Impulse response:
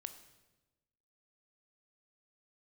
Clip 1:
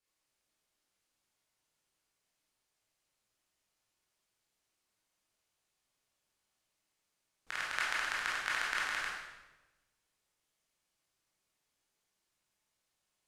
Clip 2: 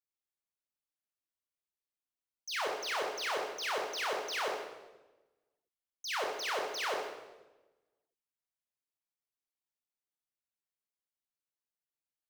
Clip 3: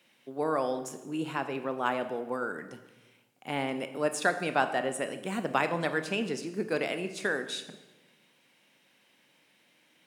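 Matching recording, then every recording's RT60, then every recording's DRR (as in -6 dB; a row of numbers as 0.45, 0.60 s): 3; 1.1, 1.1, 1.1 s; -6.5, -0.5, 9.0 dB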